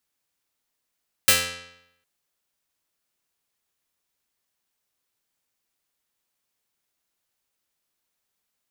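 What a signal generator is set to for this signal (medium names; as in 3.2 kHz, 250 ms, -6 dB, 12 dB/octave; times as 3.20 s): plucked string F2, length 0.76 s, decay 0.81 s, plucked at 0.24, medium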